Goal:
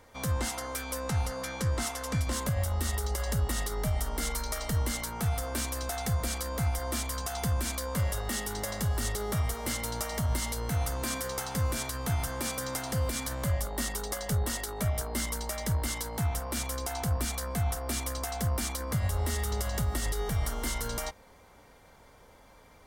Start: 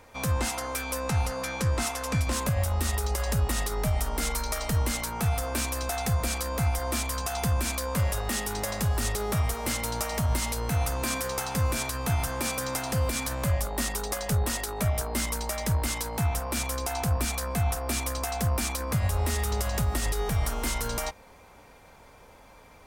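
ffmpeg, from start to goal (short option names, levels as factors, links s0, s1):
-af "asuperstop=centerf=2500:order=4:qfactor=7.9,equalizer=f=880:w=1.5:g=-2,volume=0.708"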